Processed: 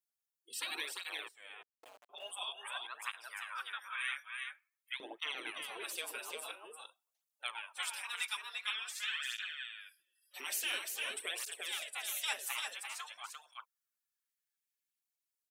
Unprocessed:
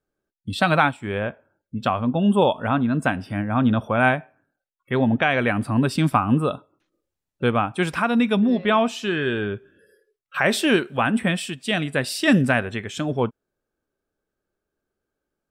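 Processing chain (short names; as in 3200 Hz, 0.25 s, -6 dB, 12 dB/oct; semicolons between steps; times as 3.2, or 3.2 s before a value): spectral gate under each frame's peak -15 dB weak; pre-emphasis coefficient 0.9; 1.28–2.1 Schmitt trigger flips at -40.5 dBFS; LFO high-pass saw up 0.2 Hz 260–2400 Hz; 4.14–4.97 frequency shift -95 Hz; echo 0.346 s -4.5 dB; tape flanging out of phase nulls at 0.48 Hz, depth 6.5 ms; gain +2 dB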